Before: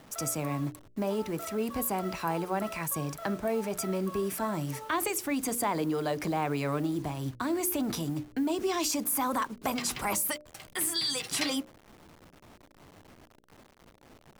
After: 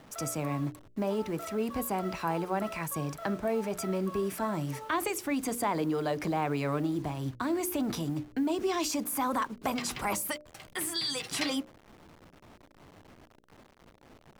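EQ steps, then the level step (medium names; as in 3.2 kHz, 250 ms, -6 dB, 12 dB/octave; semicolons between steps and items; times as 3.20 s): treble shelf 6.1 kHz -6.5 dB; 0.0 dB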